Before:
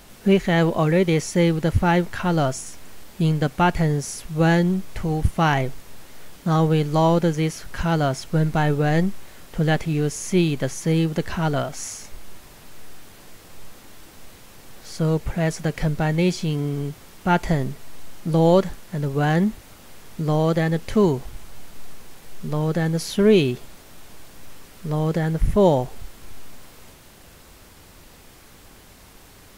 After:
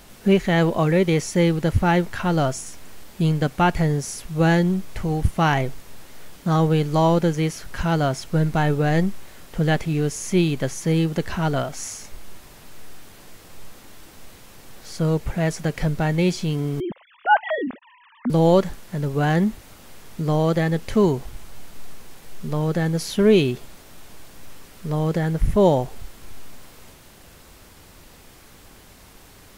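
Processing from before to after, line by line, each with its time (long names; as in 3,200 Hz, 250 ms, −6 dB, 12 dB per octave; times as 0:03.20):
0:16.80–0:18.30: three sine waves on the formant tracks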